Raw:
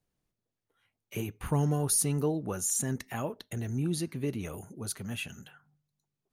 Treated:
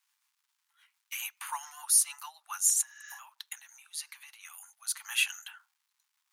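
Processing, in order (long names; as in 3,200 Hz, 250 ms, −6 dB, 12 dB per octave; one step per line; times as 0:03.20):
rotating-speaker cabinet horn 7 Hz, later 0.75 Hz, at 0:03.31
0:02.90–0:03.16: healed spectral selection 1,200–7,000 Hz before
0:02.81–0:05.03: downward compressor 6 to 1, threshold −40 dBFS, peak gain reduction 12 dB
high-shelf EQ 2,900 Hz +5.5 dB
speech leveller within 4 dB 0.5 s
surface crackle 380 per second −67 dBFS
Butterworth high-pass 860 Hz 72 dB per octave
level +4 dB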